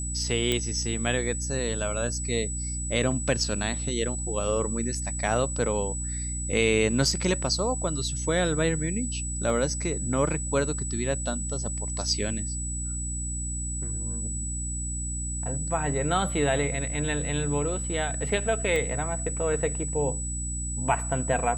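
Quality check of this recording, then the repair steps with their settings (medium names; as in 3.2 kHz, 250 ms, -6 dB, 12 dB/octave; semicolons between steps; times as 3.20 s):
hum 60 Hz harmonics 5 -33 dBFS
whine 7.9 kHz -33 dBFS
0.52 s: pop -11 dBFS
9.50 s: dropout 2.5 ms
18.76 s: pop -16 dBFS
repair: de-click; de-hum 60 Hz, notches 5; band-stop 7.9 kHz, Q 30; interpolate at 9.50 s, 2.5 ms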